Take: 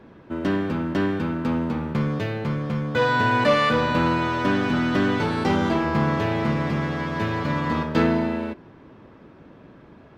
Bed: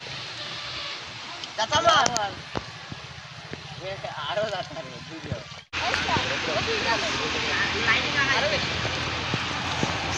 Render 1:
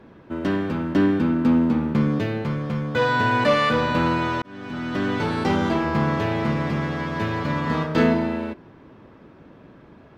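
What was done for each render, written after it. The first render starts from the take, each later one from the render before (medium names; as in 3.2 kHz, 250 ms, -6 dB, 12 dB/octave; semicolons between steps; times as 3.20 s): 0.95–2.42 s: peaking EQ 260 Hz +8 dB; 4.42–5.29 s: fade in; 7.64–8.14 s: doubling 32 ms -4 dB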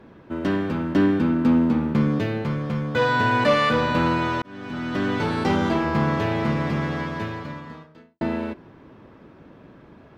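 6.98–8.21 s: fade out quadratic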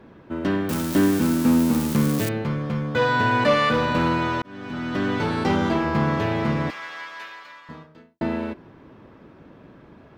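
0.69–2.29 s: zero-crossing glitches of -17 dBFS; 3.74–4.23 s: hard clipper -14.5 dBFS; 6.70–7.69 s: high-pass 1.3 kHz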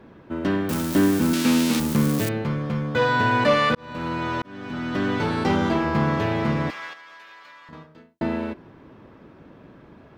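1.33–1.80 s: frequency weighting D; 3.75–4.47 s: fade in; 6.93–7.73 s: compression, threshold -42 dBFS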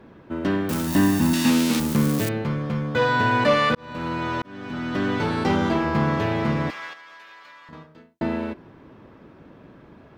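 0.87–1.50 s: comb 1.1 ms, depth 64%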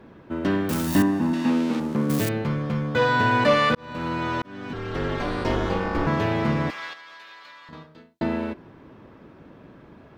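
1.02–2.10 s: band-pass filter 520 Hz, Q 0.56; 4.73–6.07 s: ring modulator 140 Hz; 6.78–8.24 s: peaking EQ 4 kHz +6 dB 0.63 oct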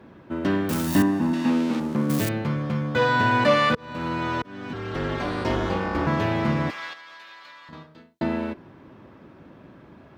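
high-pass 50 Hz; band-stop 450 Hz, Q 14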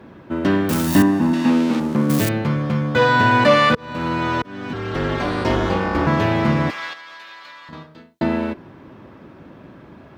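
trim +5.5 dB; peak limiter -2 dBFS, peak gain reduction 1 dB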